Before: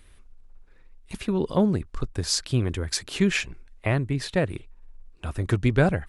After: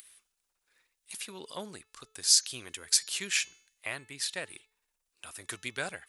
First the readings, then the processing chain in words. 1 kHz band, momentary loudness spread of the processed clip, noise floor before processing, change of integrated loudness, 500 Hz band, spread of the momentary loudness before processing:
-12.5 dB, 22 LU, -53 dBFS, -4.0 dB, -18.0 dB, 12 LU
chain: upward compressor, threshold -44 dBFS; differentiator; de-hum 434.8 Hz, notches 16; gain +5.5 dB

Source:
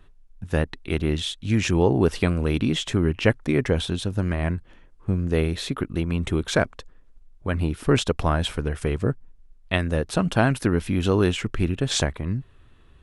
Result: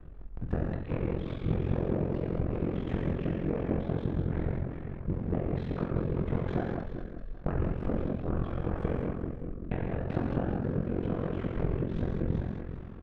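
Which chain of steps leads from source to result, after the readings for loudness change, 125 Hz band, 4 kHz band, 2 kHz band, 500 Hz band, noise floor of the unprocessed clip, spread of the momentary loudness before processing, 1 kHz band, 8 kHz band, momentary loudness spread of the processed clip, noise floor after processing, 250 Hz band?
-9.0 dB, -7.0 dB, under -25 dB, -17.0 dB, -9.5 dB, -52 dBFS, 7 LU, -10.0 dB, under -40 dB, 6 LU, -42 dBFS, -7.5 dB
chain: cycle switcher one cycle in 3, inverted; de-esser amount 80%; LPF 1400 Hz 12 dB/oct; compressor 16:1, threshold -33 dBFS, peak gain reduction 19.5 dB; feedback echo 0.388 s, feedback 20%, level -8 dB; rotary speaker horn 5 Hz, later 0.8 Hz, at 5.37; doubler 37 ms -14 dB; non-linear reverb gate 0.24 s flat, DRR -1.5 dB; ring modulator 22 Hz; gain +7.5 dB

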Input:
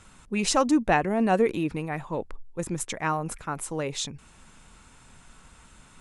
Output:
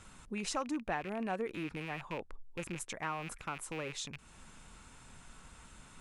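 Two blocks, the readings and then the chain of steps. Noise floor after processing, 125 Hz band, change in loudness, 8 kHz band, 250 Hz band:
-57 dBFS, -12.5 dB, -12.5 dB, -11.5 dB, -14.0 dB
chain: rattling part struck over -39 dBFS, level -24 dBFS; dynamic EQ 1300 Hz, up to +5 dB, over -40 dBFS, Q 1; compressor 2:1, threshold -42 dBFS, peak gain reduction 15 dB; gain -2.5 dB

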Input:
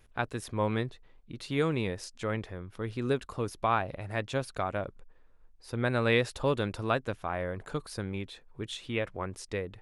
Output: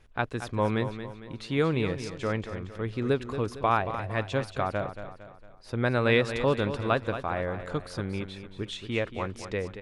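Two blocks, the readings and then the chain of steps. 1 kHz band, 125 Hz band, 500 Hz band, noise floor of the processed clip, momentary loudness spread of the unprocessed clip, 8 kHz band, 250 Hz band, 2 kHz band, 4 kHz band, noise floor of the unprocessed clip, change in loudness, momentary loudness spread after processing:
+3.0 dB, +3.0 dB, +3.5 dB, -49 dBFS, 11 LU, -2.0 dB, +3.5 dB, +3.0 dB, +2.0 dB, -58 dBFS, +3.0 dB, 11 LU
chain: air absorption 55 m; feedback echo 0.228 s, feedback 45%, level -10.5 dB; gain +3 dB

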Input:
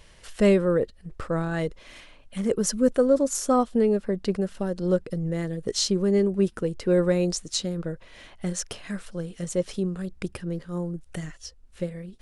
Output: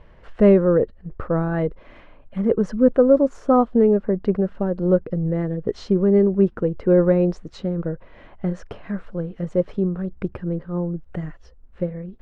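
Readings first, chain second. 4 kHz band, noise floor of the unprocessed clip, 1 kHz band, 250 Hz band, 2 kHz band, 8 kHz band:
under -10 dB, -52 dBFS, +4.0 dB, +5.5 dB, -1.0 dB, under -20 dB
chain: LPF 1300 Hz 12 dB/oct; gain +5.5 dB

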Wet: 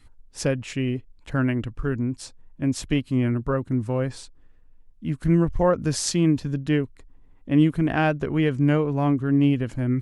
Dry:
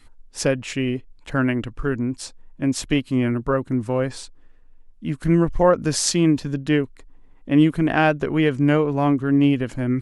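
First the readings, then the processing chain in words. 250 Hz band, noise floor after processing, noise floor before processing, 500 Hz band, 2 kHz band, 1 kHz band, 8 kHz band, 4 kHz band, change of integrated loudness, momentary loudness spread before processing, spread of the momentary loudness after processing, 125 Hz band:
-2.5 dB, -52 dBFS, -49 dBFS, -4.0 dB, -5.0 dB, -4.5 dB, -5.0 dB, -5.0 dB, -2.5 dB, 10 LU, 10 LU, +0.5 dB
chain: bell 74 Hz +8 dB 2.6 oct; gain -5 dB

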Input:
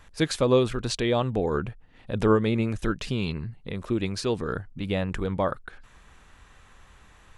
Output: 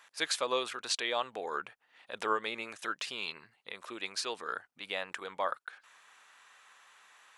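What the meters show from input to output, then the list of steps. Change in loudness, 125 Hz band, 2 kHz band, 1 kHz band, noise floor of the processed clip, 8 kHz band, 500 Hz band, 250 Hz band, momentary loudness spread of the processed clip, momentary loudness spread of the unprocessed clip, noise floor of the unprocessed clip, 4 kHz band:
-9.0 dB, -34.5 dB, -1.5 dB, -3.0 dB, -72 dBFS, -1.0 dB, -12.5 dB, -21.5 dB, 14 LU, 12 LU, -54 dBFS, -1.0 dB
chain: HPF 910 Hz 12 dB/oct; gain -1 dB

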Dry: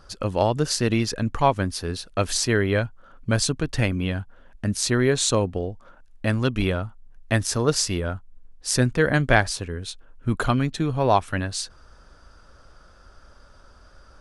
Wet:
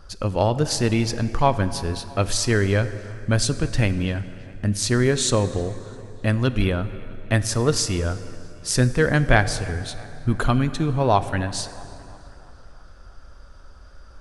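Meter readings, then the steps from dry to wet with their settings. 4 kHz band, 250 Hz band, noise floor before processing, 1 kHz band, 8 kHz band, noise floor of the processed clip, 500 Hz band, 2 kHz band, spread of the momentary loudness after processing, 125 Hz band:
0.0 dB, +1.0 dB, -52 dBFS, +0.5 dB, 0.0 dB, -45 dBFS, +0.5 dB, +0.5 dB, 13 LU, +3.0 dB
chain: low shelf 83 Hz +8.5 dB; dark delay 0.329 s, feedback 53%, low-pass 3700 Hz, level -22 dB; plate-style reverb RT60 3 s, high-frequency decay 0.65×, DRR 12.5 dB

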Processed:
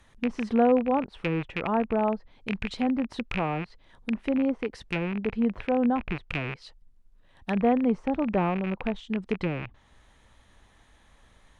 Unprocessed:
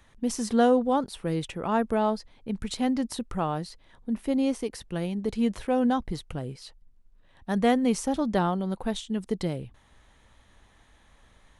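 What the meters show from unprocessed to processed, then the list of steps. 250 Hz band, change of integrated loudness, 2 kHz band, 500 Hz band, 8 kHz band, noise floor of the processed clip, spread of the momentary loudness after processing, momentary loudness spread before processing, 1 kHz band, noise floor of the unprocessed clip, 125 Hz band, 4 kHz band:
0.0 dB, 0.0 dB, +4.0 dB, 0.0 dB, under -15 dB, -60 dBFS, 11 LU, 13 LU, -0.5 dB, -60 dBFS, 0.0 dB, -4.0 dB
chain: rattling part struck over -39 dBFS, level -16 dBFS; treble ducked by the level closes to 1200 Hz, closed at -23 dBFS

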